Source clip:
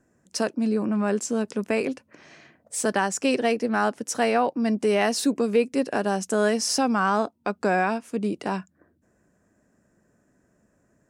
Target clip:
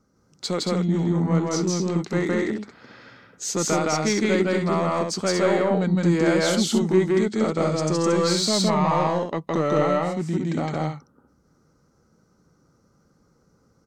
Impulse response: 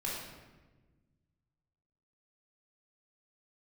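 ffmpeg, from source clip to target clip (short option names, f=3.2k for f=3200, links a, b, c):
-af "asoftclip=type=tanh:threshold=-14.5dB,asetrate=35280,aresample=44100,aecho=1:1:163.3|227.4:1|0.562"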